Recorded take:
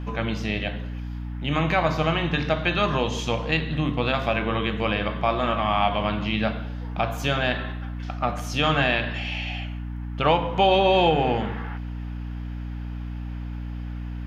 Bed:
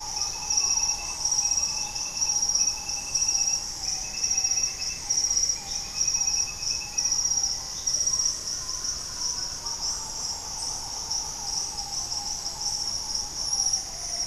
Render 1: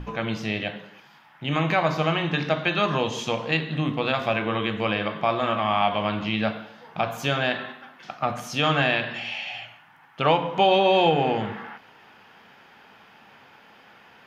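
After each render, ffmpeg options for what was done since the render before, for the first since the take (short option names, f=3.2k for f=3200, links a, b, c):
-af "bandreject=f=60:t=h:w=6,bandreject=f=120:t=h:w=6,bandreject=f=180:t=h:w=6,bandreject=f=240:t=h:w=6,bandreject=f=300:t=h:w=6"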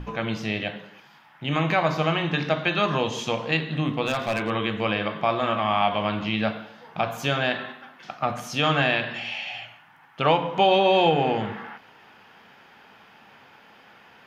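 -filter_complex "[0:a]asettb=1/sr,asplit=3[a][b][c];[a]atrim=end=4.054[d];[b]atrim=start=4.05:end=4.5,asetpts=PTS-STARTPTS,afade=t=in:d=0.004:c=qsin,afade=t=out:st=0.446:d=0.004:c=qsin,volume=20dB,asoftclip=hard,volume=-20dB[e];[c]atrim=start=4.496[f];[d][e]acrossfade=d=0.004:c1=hsin:c2=qsin[g];[g][f]acrossfade=d=0.004:c1=qsin:c2=hsin"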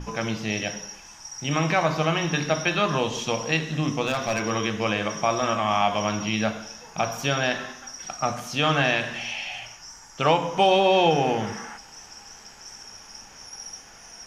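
-filter_complex "[1:a]volume=-14.5dB[a];[0:a][a]amix=inputs=2:normalize=0"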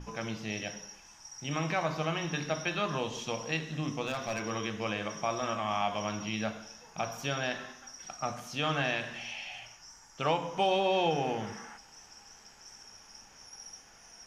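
-af "volume=-9dB"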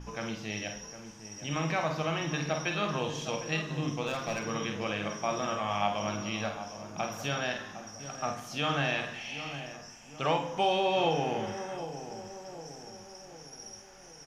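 -filter_complex "[0:a]asplit=2[a][b];[b]adelay=49,volume=-7dB[c];[a][c]amix=inputs=2:normalize=0,asplit=2[d][e];[e]adelay=758,lowpass=f=1.1k:p=1,volume=-10dB,asplit=2[f][g];[g]adelay=758,lowpass=f=1.1k:p=1,volume=0.55,asplit=2[h][i];[i]adelay=758,lowpass=f=1.1k:p=1,volume=0.55,asplit=2[j][k];[k]adelay=758,lowpass=f=1.1k:p=1,volume=0.55,asplit=2[l][m];[m]adelay=758,lowpass=f=1.1k:p=1,volume=0.55,asplit=2[n][o];[o]adelay=758,lowpass=f=1.1k:p=1,volume=0.55[p];[d][f][h][j][l][n][p]amix=inputs=7:normalize=0"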